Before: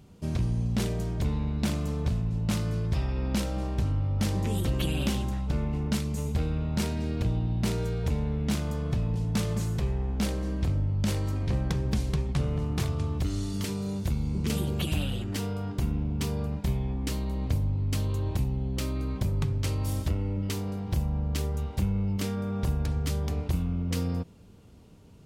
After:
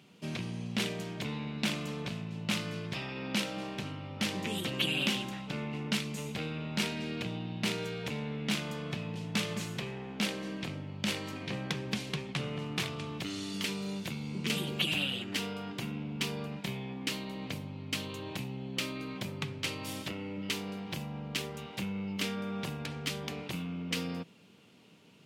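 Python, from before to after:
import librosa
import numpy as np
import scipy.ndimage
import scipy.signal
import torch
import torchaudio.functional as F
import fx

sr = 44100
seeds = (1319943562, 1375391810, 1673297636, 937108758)

y = scipy.signal.sosfilt(scipy.signal.butter(4, 150.0, 'highpass', fs=sr, output='sos'), x)
y = fx.peak_eq(y, sr, hz=2700.0, db=12.5, octaves=1.6)
y = y * librosa.db_to_amplitude(-4.5)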